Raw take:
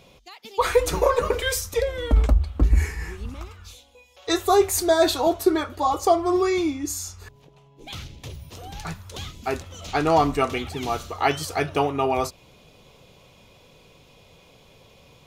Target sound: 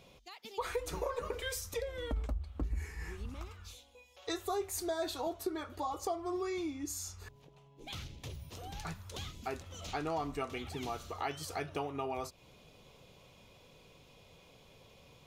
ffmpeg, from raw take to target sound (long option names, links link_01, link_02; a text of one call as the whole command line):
ffmpeg -i in.wav -af "acompressor=threshold=-31dB:ratio=2.5,volume=-7dB" out.wav